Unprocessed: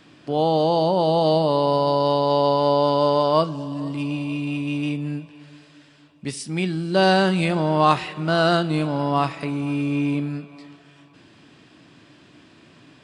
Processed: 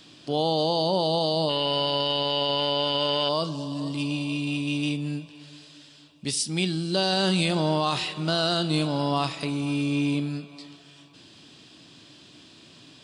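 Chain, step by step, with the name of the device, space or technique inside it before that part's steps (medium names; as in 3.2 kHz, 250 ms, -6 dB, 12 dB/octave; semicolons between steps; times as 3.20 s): 1.49–3.29 s: high-order bell 2.1 kHz +15.5 dB 1.3 oct; over-bright horn tweeter (resonant high shelf 2.7 kHz +8.5 dB, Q 1.5; peak limiter -10.5 dBFS, peak gain reduction 9.5 dB); trim -2.5 dB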